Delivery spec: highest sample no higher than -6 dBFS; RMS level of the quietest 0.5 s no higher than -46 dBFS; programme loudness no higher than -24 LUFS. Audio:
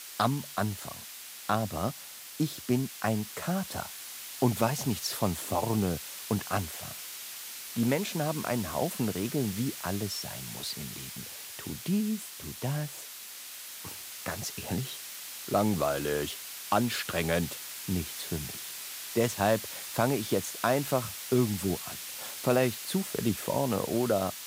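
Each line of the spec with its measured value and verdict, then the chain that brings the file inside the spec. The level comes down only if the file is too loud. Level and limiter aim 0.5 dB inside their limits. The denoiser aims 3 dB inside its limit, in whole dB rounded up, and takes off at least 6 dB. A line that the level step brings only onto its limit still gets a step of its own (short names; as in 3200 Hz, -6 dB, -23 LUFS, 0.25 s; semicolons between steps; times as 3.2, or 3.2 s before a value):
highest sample -11.5 dBFS: OK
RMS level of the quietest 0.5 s -45 dBFS: fail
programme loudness -31.5 LUFS: OK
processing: denoiser 6 dB, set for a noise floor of -45 dBFS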